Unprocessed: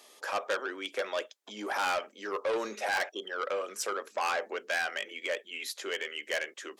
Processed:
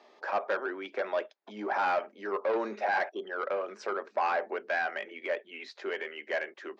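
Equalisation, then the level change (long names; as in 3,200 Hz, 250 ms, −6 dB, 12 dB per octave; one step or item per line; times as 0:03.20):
high-frequency loss of the air 80 metres
loudspeaker in its box 210–4,500 Hz, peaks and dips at 290 Hz −6 dB, 490 Hz −8 dB, 1,200 Hz −4 dB, 3,200 Hz −5 dB
parametric band 3,400 Hz −11.5 dB 2.4 octaves
+8.0 dB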